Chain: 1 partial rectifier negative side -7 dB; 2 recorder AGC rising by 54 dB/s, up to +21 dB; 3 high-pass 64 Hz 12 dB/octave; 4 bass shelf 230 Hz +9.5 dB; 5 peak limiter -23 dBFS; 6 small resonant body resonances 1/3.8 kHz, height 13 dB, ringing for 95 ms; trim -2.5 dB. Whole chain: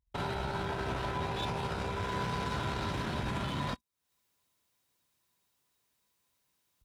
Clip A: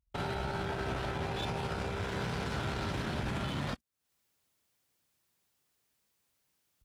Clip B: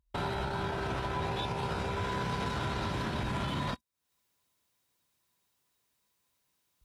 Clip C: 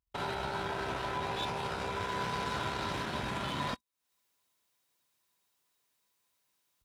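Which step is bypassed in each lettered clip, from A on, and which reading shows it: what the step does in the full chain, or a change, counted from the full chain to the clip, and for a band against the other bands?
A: 6, 1 kHz band -3.0 dB; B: 1, distortion -8 dB; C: 4, 125 Hz band -6.5 dB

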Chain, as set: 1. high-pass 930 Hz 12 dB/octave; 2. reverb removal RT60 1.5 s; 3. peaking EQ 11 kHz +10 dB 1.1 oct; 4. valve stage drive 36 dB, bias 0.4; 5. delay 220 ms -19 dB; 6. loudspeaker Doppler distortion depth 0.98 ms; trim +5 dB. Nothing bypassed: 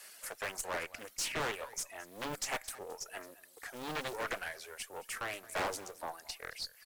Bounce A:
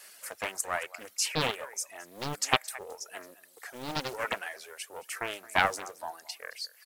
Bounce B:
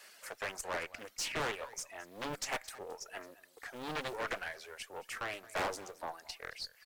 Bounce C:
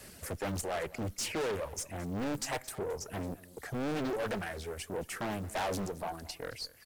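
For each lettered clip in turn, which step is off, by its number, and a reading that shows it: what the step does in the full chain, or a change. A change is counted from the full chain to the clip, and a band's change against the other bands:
4, crest factor change +16.5 dB; 3, 8 kHz band -3.0 dB; 1, crest factor change -4.0 dB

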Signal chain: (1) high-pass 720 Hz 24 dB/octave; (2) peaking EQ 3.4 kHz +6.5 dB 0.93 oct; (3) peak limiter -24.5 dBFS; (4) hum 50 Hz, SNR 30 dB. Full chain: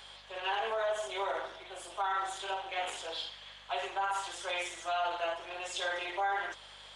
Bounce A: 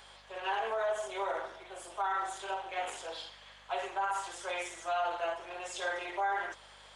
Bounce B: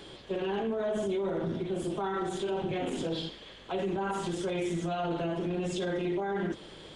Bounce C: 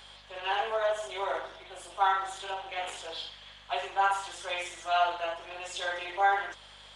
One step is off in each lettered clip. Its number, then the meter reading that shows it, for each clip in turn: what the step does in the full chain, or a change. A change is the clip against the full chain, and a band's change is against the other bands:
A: 2, 4 kHz band -5.5 dB; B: 1, crest factor change -3.5 dB; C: 3, crest factor change +7.0 dB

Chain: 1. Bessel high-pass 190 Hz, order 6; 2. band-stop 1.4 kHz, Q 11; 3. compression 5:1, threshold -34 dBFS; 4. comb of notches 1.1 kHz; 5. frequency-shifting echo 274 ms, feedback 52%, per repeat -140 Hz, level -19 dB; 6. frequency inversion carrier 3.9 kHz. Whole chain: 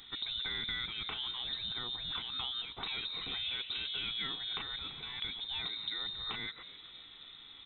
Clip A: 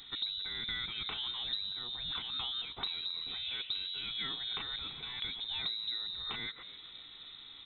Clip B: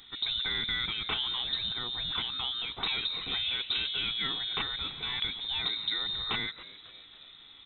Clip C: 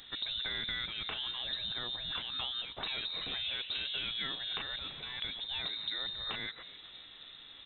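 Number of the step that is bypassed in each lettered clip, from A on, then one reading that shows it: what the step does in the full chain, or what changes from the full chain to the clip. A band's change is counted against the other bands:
1, 4 kHz band +2.5 dB; 3, momentary loudness spread change +2 LU; 4, 500 Hz band +3.0 dB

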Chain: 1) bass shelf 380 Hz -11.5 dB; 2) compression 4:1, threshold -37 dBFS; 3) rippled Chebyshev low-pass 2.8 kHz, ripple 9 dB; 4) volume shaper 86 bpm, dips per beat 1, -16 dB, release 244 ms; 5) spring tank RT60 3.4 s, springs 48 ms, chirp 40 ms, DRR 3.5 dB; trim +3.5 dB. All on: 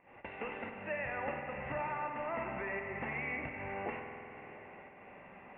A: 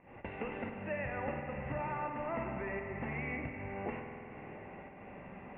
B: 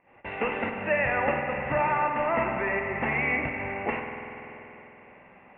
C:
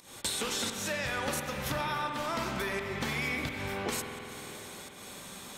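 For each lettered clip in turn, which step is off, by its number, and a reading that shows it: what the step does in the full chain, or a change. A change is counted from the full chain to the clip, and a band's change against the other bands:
1, 125 Hz band +6.0 dB; 2, mean gain reduction 8.0 dB; 3, 125 Hz band +4.5 dB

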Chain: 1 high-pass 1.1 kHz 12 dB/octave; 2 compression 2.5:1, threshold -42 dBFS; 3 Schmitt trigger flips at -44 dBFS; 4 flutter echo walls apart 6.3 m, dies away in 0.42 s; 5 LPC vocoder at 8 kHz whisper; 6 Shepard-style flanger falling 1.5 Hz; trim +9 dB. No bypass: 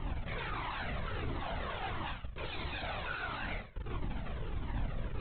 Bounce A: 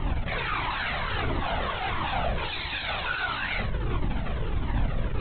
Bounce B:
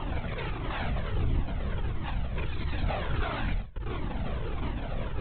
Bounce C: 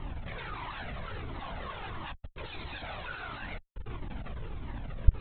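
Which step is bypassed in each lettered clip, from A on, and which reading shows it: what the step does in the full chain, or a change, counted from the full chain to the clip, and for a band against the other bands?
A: 2, mean gain reduction 5.0 dB; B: 1, 125 Hz band +6.5 dB; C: 4, crest factor change +15.0 dB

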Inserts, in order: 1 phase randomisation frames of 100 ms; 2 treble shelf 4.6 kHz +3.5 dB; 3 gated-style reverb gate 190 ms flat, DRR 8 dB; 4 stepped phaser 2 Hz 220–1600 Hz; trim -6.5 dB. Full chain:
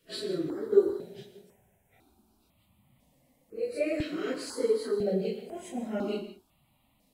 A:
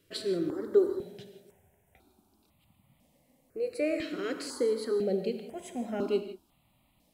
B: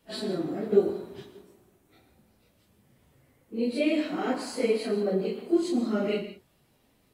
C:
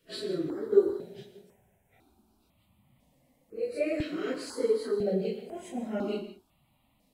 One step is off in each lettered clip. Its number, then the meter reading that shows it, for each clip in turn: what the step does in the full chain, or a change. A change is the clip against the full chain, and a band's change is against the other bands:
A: 1, 125 Hz band -3.0 dB; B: 4, 1 kHz band +3.5 dB; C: 2, 8 kHz band -2.5 dB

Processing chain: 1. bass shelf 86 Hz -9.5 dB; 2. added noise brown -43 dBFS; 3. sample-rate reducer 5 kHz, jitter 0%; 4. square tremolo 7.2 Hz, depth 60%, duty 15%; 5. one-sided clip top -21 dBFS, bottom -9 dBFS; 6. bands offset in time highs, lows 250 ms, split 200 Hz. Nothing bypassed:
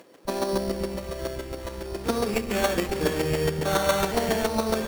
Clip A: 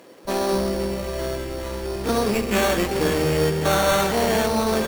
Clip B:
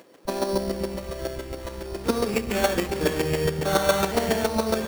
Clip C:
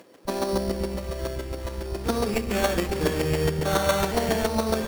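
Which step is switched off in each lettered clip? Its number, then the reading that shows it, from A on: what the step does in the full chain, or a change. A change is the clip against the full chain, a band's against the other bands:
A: 4, crest factor change -4.0 dB; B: 5, distortion -12 dB; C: 1, 125 Hz band +3.0 dB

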